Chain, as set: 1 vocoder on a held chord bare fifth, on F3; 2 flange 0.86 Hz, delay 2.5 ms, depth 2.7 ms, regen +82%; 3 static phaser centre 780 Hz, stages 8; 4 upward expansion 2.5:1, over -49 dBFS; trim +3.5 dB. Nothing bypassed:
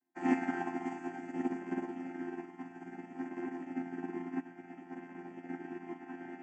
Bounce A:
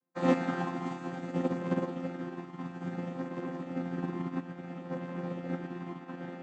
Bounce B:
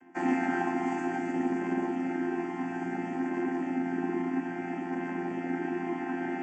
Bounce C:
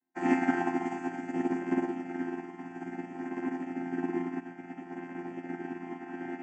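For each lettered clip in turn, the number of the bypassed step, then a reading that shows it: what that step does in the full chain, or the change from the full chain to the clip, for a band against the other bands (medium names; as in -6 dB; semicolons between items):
3, 125 Hz band +12.5 dB; 4, crest factor change -8.0 dB; 2, loudness change +5.5 LU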